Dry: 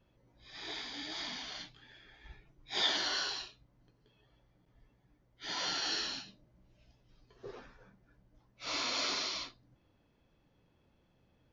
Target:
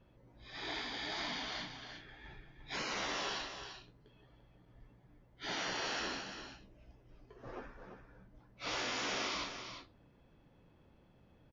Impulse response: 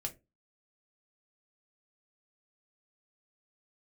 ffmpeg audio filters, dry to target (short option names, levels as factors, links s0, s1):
-filter_complex "[0:a]asettb=1/sr,asplit=3[s0][s1][s2];[s0]atrim=end=5.634[s3];[s1]atrim=start=5.63:end=7.78,asetpts=PTS-STARTPTS,afade=t=in:d=0.004:c=qsin,afade=t=out:st=2.146:d=0.004:c=qsin,equalizer=f=160:t=o:w=0.67:g=-5,equalizer=f=400:t=o:w=0.67:g=4,equalizer=f=4000:t=o:w=0.67:g=-8[s4];[s2]atrim=start=7.776[s5];[s3][s4]acrossfade=d=0.004:c1=hsin:c2=qsin[s6];[s6][s5]acrossfade=d=0.004:c1=qsin:c2=hsin,afftfilt=real='re*lt(hypot(re,im),0.0316)':imag='im*lt(hypot(re,im),0.0316)':win_size=1024:overlap=0.75,highshelf=f=4000:g=-11.5,aecho=1:1:344:0.376,volume=1.88"